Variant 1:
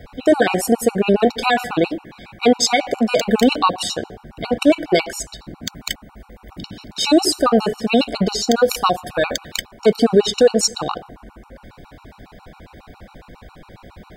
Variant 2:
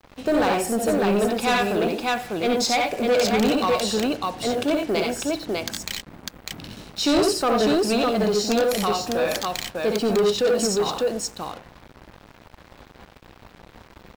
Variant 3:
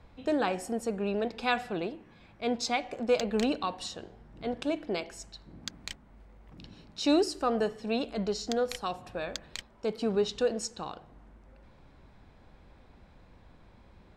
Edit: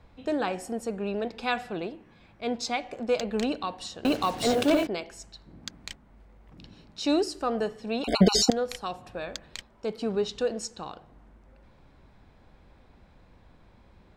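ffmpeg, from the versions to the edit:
-filter_complex "[2:a]asplit=3[a][b][c];[a]atrim=end=4.052[d];[1:a]atrim=start=4.048:end=4.872[e];[b]atrim=start=4.868:end=8.042[f];[0:a]atrim=start=8.038:end=8.502[g];[c]atrim=start=8.498[h];[d][e]acrossfade=d=0.004:c1=hsin:c2=hsin[i];[i][f]acrossfade=d=0.004:c1=hsin:c2=hsin[j];[j][g]acrossfade=d=0.004:c1=hsin:c2=hsin[k];[k][h]acrossfade=d=0.004:c1=hsin:c2=hsin"

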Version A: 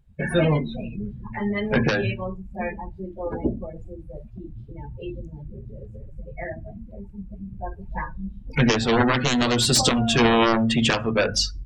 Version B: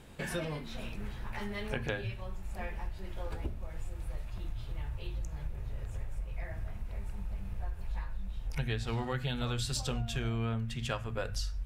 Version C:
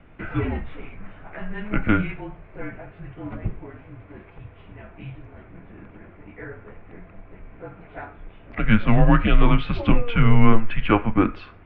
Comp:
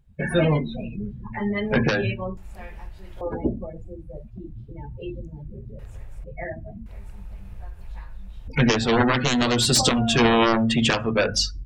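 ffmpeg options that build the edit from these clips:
-filter_complex "[1:a]asplit=3[a][b][c];[0:a]asplit=4[d][e][f][g];[d]atrim=end=2.372[h];[a]atrim=start=2.368:end=3.212[i];[e]atrim=start=3.208:end=5.792[j];[b]atrim=start=5.788:end=6.242[k];[f]atrim=start=6.238:end=6.862[l];[c]atrim=start=6.858:end=8.482[m];[g]atrim=start=8.478[n];[h][i]acrossfade=d=0.004:c1=hsin:c2=hsin[o];[o][j]acrossfade=d=0.004:c1=hsin:c2=hsin[p];[p][k]acrossfade=d=0.004:c1=hsin:c2=hsin[q];[q][l]acrossfade=d=0.004:c1=hsin:c2=hsin[r];[r][m]acrossfade=d=0.004:c1=hsin:c2=hsin[s];[s][n]acrossfade=d=0.004:c1=hsin:c2=hsin"

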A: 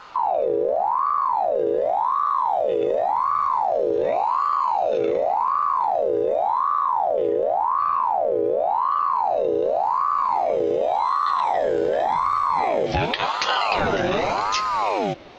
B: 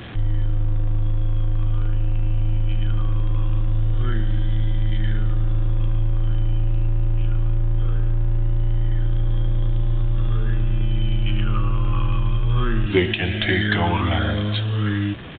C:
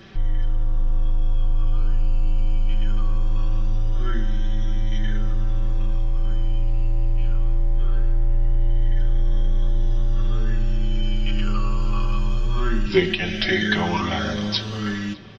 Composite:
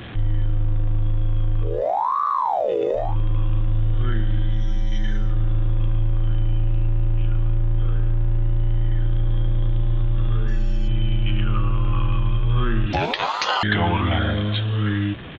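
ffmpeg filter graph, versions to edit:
-filter_complex "[0:a]asplit=2[a][b];[2:a]asplit=2[c][d];[1:a]asplit=5[e][f][g][h][i];[e]atrim=end=1.84[j];[a]atrim=start=1.6:end=3.17[k];[f]atrim=start=2.93:end=4.71[l];[c]atrim=start=4.47:end=5.38[m];[g]atrim=start=5.14:end=10.482[n];[d]atrim=start=10.478:end=10.882[o];[h]atrim=start=10.878:end=12.932[p];[b]atrim=start=12.928:end=13.632[q];[i]atrim=start=13.628[r];[j][k]acrossfade=d=0.24:c1=tri:c2=tri[s];[s][l]acrossfade=d=0.24:c1=tri:c2=tri[t];[t][m]acrossfade=d=0.24:c1=tri:c2=tri[u];[u][n]acrossfade=d=0.24:c1=tri:c2=tri[v];[v][o]acrossfade=d=0.004:c1=hsin:c2=hsin[w];[w][p]acrossfade=d=0.004:c1=hsin:c2=hsin[x];[x][q]acrossfade=d=0.004:c1=hsin:c2=hsin[y];[y][r]acrossfade=d=0.004:c1=hsin:c2=hsin"

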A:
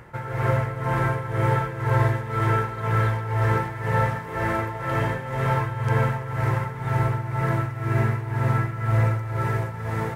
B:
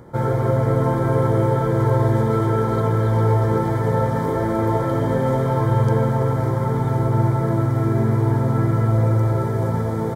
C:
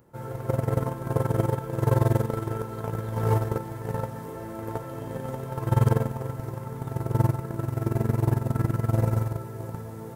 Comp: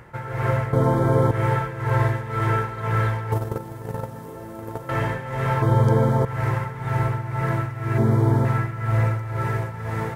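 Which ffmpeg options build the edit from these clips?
-filter_complex "[1:a]asplit=3[a][b][c];[0:a]asplit=5[d][e][f][g][h];[d]atrim=end=0.732[i];[a]atrim=start=0.728:end=1.312[j];[e]atrim=start=1.308:end=3.322[k];[2:a]atrim=start=3.318:end=4.892[l];[f]atrim=start=4.888:end=5.622[m];[b]atrim=start=5.618:end=6.252[n];[g]atrim=start=6.248:end=7.982[o];[c]atrim=start=7.978:end=8.452[p];[h]atrim=start=8.448[q];[i][j]acrossfade=d=0.004:c1=hsin:c2=hsin[r];[r][k]acrossfade=d=0.004:c1=hsin:c2=hsin[s];[s][l]acrossfade=d=0.004:c1=hsin:c2=hsin[t];[t][m]acrossfade=d=0.004:c1=hsin:c2=hsin[u];[u][n]acrossfade=d=0.004:c1=hsin:c2=hsin[v];[v][o]acrossfade=d=0.004:c1=hsin:c2=hsin[w];[w][p]acrossfade=d=0.004:c1=hsin:c2=hsin[x];[x][q]acrossfade=d=0.004:c1=hsin:c2=hsin"

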